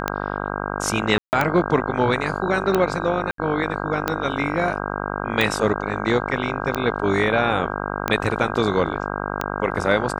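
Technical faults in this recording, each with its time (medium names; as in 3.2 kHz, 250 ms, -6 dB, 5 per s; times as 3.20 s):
buzz 50 Hz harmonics 32 -27 dBFS
tick 45 rpm -6 dBFS
1.18–1.33 s: dropout 149 ms
3.31–3.38 s: dropout 73 ms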